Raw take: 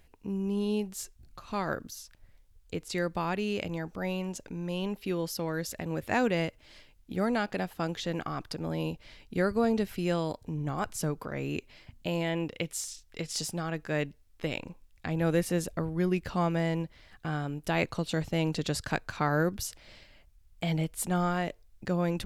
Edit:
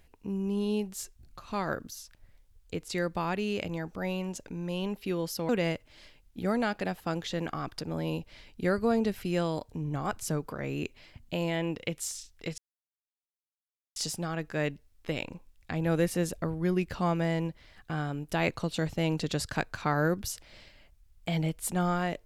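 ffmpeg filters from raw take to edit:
-filter_complex "[0:a]asplit=3[a][b][c];[a]atrim=end=5.492[d];[b]atrim=start=6.218:end=13.31,asetpts=PTS-STARTPTS,afade=t=out:st=7.088:d=0.004:c=hsin,apad=pad_dur=1.38[e];[c]atrim=start=13.31,asetpts=PTS-STARTPTS,afade=t=in:d=0.004:c=hsin[f];[e][f]concat=n=2:v=0:a=1[g];[d][g]acrossfade=d=0.004:c1=hsin:c2=hsin"

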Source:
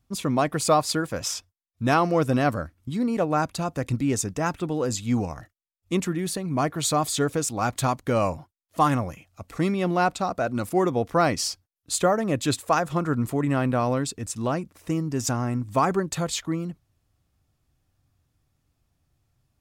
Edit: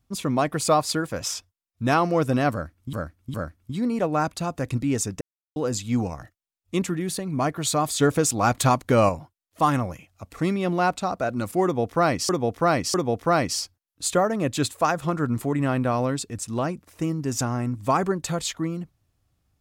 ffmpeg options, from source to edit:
-filter_complex "[0:a]asplit=9[a][b][c][d][e][f][g][h][i];[a]atrim=end=2.932[j];[b]atrim=start=2.518:end=2.932[k];[c]atrim=start=2.518:end=4.39,asetpts=PTS-STARTPTS,afade=t=out:st=1.868:d=0.004:c=hsin[l];[d]atrim=start=4.39:end=4.74,asetpts=PTS-STARTPTS,volume=0[m];[e]atrim=start=4.74:end=7.192,asetpts=PTS-STARTPTS,afade=t=in:d=0.004:c=hsin[n];[f]atrim=start=7.188:end=8.272,asetpts=PTS-STARTPTS,volume=4.5dB[o];[g]atrim=start=8.268:end=11.472[p];[h]atrim=start=10.818:end=11.472[q];[i]atrim=start=10.818[r];[j][k]acrossfade=d=0.004:c1=hsin:c2=hsin[s];[l][m][n]concat=n=3:v=0:a=1[t];[s][t]acrossfade=d=0.004:c1=hsin:c2=hsin[u];[u][o]acrossfade=d=0.004:c1=hsin:c2=hsin[v];[v][p]acrossfade=d=0.004:c1=hsin:c2=hsin[w];[w][q]acrossfade=d=0.004:c1=hsin:c2=hsin[x];[x][r]acrossfade=d=0.004:c1=hsin:c2=hsin"

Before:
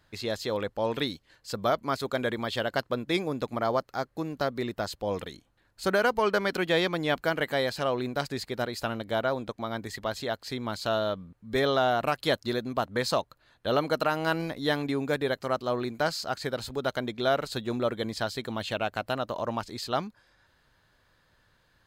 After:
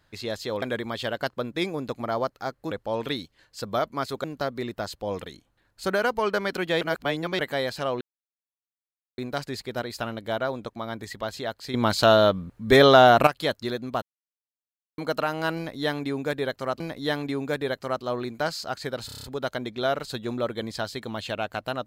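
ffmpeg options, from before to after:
-filter_complex "[0:a]asplit=18[a][b][c][d][e][f][g][h][i][j][k][l][m][n][o][p][q][r];[a]atrim=end=0.622[s];[b]atrim=start=2.148:end=4.242[t];[c]atrim=start=0.618:end=2.152[u];[d]atrim=start=4.238:end=6.812[v];[e]atrim=start=6.808:end=7.392,asetpts=PTS-STARTPTS,areverse[w];[f]atrim=start=7.388:end=8.01,asetpts=PTS-STARTPTS,afade=t=out:st=0.618:d=0.004:c=hsin,apad=pad_dur=1.17[x];[g]atrim=start=8.01:end=10.572,asetpts=PTS-STARTPTS,afade=t=in:d=0.004:c=hsin[y];[h]atrim=start=10.568:end=12.102,asetpts=PTS-STARTPTS,volume=10.5dB[z];[i]atrim=start=12.098:end=12.85,asetpts=PTS-STARTPTS,afade=t=out:st=0.748:d=0.004:c=hsin[aa];[j]atrim=start=12.85:end=13.81,asetpts=PTS-STARTPTS,volume=0[ab];[k]atrim=start=13.81:end=15.632,asetpts=PTS-STARTPTS,afade=t=in:d=0.004:c=hsin[ac];[l]atrim=start=14.398:end=16.692[ad];[m]atrim=start=16.658:end=16.692[ae];[n]atrim=start=16.658:end=16.692[af];[o]atrim=start=16.658:end=16.692[ag];[p]atrim=start=16.658:end=16.692[ah];[q]atrim=start=16.658:end=16.692[ai];[r]atrim=start=16.658[aj];[s][t]acrossfade=d=0.004:c1=hsin:c2=hsin[ak];[ak][u]acrossfade=d=0.004:c1=hsin:c2=hsin[al];[al][v]acrossfade=d=0.004:c1=hsin:c2=hsin[am];[am][w]acrossfade=d=0.004:c1=hsin:c2=hsin[an];[x][y]concat=n=2:v=0:a=1[ao];[an][ao]acrossfade=d=0.004:c1=hsin:c2=hsin[ap];[ap][z]acrossfade=d=0.004:c1=hsin:c2=hsin[aq];[aa][ab][ac]concat=n=3:v=0:a=1[ar];[aq][ar]acrossfade=d=0.004:c1=hsin:c2=hsin[as];[as][ad]acrossfade=d=0.004:c1=hsin:c2=hsin[at];[at][ae]acrossfade=d=0.004:c1=hsin:c2=hsin[au];[au][af]acrossfade=d=0.004:c1=hsin:c2=hsin[av];[av][ag]acrossfade=d=0.004:c1=hsin:c2=hsin[aw];[aw][ah]acrossfade=d=0.004:c1=hsin:c2=hsin[ax];[ax][ai]acrossfade=d=0.004:c1=hsin:c2=hsin[ay];[ay][aj]acrossfade=d=0.004:c1=hsin:c2=hsin"

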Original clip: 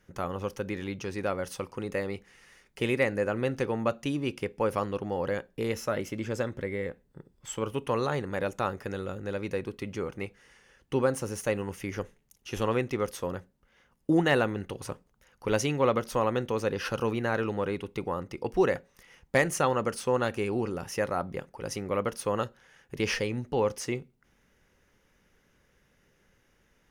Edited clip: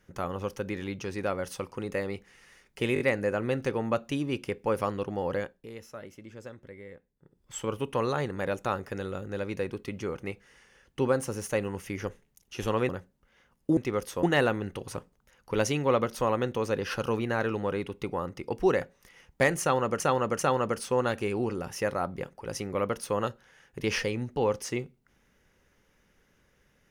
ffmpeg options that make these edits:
-filter_complex "[0:a]asplit=11[a][b][c][d][e][f][g][h][i][j][k];[a]atrim=end=2.962[l];[b]atrim=start=2.938:end=2.962[m];[c]atrim=start=2.938:end=2.962[n];[d]atrim=start=2.938:end=5.61,asetpts=PTS-STARTPTS,afade=t=out:st=2.362:d=0.31:silence=0.223872[o];[e]atrim=start=5.61:end=7.18,asetpts=PTS-STARTPTS,volume=-13dB[p];[f]atrim=start=7.18:end=12.832,asetpts=PTS-STARTPTS,afade=t=in:d=0.31:silence=0.223872[q];[g]atrim=start=13.288:end=14.172[r];[h]atrim=start=12.828:end=13.292[s];[i]atrim=start=14.168:end=19.942[t];[j]atrim=start=19.548:end=19.942[u];[k]atrim=start=19.548[v];[l][m]acrossfade=d=0.004:c1=hsin:c2=hsin[w];[w][n]acrossfade=d=0.004:c1=hsin:c2=hsin[x];[o][p][q]concat=n=3:v=0:a=1[y];[x][y]acrossfade=d=0.004:c1=hsin:c2=hsin[z];[z][r]acrossfade=d=0.004:c1=hsin:c2=hsin[aa];[aa][s]acrossfade=d=0.004:c1=hsin:c2=hsin[ab];[ab][t]acrossfade=d=0.004:c1=hsin:c2=hsin[ac];[ac][u]acrossfade=d=0.004:c1=hsin:c2=hsin[ad];[ad][v]acrossfade=d=0.004:c1=hsin:c2=hsin"

